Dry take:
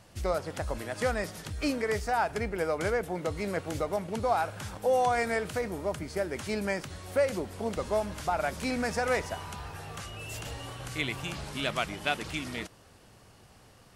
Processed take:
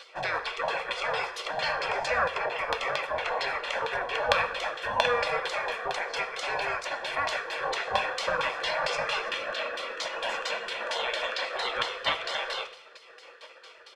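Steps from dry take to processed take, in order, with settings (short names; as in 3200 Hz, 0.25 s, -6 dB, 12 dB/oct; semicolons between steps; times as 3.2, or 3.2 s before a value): LFO low-pass saw down 4.4 Hz 810–3500 Hz; comb 1.2 ms, depth 99%; spectral gate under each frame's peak -20 dB weak; in parallel at -2 dB: negative-ratio compressor -47 dBFS; on the sum: resonant low shelf 370 Hz -10 dB, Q 3; on a send at -9.5 dB: reverb, pre-delay 3 ms; on the sum: gain +8.5 dB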